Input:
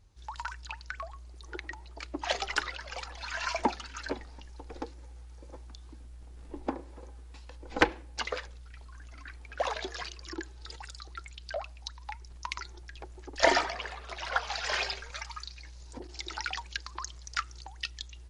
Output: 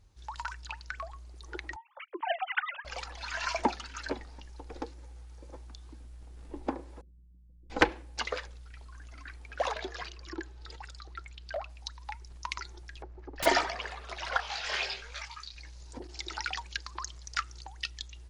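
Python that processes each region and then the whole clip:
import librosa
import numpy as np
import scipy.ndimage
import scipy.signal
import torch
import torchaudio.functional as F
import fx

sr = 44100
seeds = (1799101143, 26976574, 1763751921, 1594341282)

y = fx.chain(x, sr, fx.sine_speech(),
    fx.highpass(hz=290.0, slope=6), at=(1.76, 2.85))
y = fx.chain(y, sr, fx.ladder_lowpass(hz=230.0, resonance_pct=40),
    fx.comb(ms=5.8, depth=0.41), at=(7.01, 7.7))
y = fx.chain(y, sr, fx.lowpass(hz=3300.0, slope=6),
    fx.clip_hard(threshold_db=-28.0), at=(9.72, 11.7))
y = fx.chain(y, sr, fx.lowpass(hz=4300.0, slope=24),
    fx.peak_eq(hz=3400.0, db=-12.5, octaves=1.2),
    fx.overflow_wrap(gain_db=26.0), at=(13.02, 13.46))
y = fx.chain(y, sr, fx.peak_eq(hz=3000.0, db=5.0, octaves=1.1),
    fx.detune_double(cents=45), at=(14.37, 15.55))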